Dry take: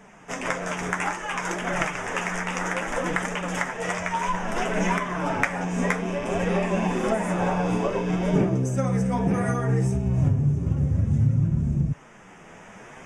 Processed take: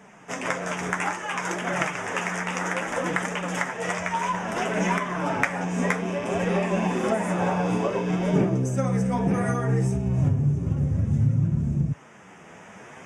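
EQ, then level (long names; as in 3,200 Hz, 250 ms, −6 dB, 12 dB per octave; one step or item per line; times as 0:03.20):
high-pass filter 76 Hz
0.0 dB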